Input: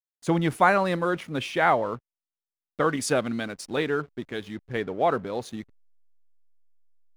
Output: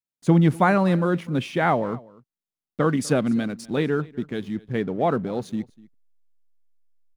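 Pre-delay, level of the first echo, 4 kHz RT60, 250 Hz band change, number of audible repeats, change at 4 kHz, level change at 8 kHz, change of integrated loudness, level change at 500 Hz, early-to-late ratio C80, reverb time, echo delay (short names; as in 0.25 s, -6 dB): none, -22.5 dB, none, +7.5 dB, 1, -2.0 dB, -2.0 dB, +3.0 dB, +1.5 dB, none, none, 0.247 s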